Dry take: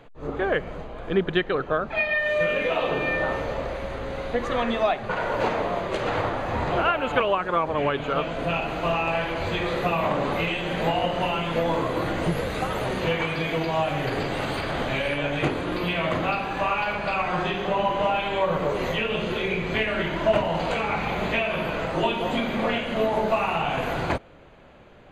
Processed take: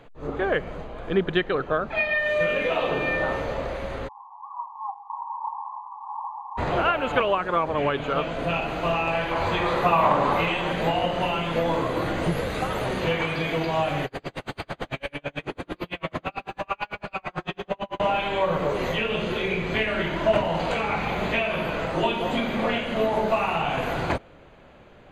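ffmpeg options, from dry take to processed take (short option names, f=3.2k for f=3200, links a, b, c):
-filter_complex "[0:a]asplit=3[a][b][c];[a]afade=t=out:st=4.07:d=0.02[d];[b]asuperpass=centerf=950:order=12:qfactor=3,afade=t=in:st=4.07:d=0.02,afade=t=out:st=6.57:d=0.02[e];[c]afade=t=in:st=6.57:d=0.02[f];[d][e][f]amix=inputs=3:normalize=0,asettb=1/sr,asplit=3[g][h][i];[g]atrim=end=9.314[j];[h]atrim=start=9.31:end=10.72,asetpts=PTS-STARTPTS,afade=t=in:d=0.004:c=qsin,afade=t=out:st=1.406:d=0.004:c=qsin,equalizer=f=1k:w=1.6:g=9[k];[i]atrim=start=10.716[l];[j][k]acrossfade=d=0.004:c1=hsin:c2=qsin[m];[m][l]acrossfade=d=0.004:c1=qsin:c2=hsin,asettb=1/sr,asplit=3[n][o][p];[n]atrim=end=14.054[q];[o]atrim=start=14.05:end=18,asetpts=PTS-STARTPTS,afade=t=in:d=0.004:c=qsin,afade=t=out:st=3.946:d=0.004:c=qsin,aeval=exprs='val(0)*pow(10,-40*(0.5-0.5*cos(2*PI*9*n/s))/20)':c=same[r];[p]atrim=start=17.996[s];[q][r]acrossfade=d=0.004:c1=hsin:c2=qsin[t];[t][s]acrossfade=d=0.004:c1=qsin:c2=hsin"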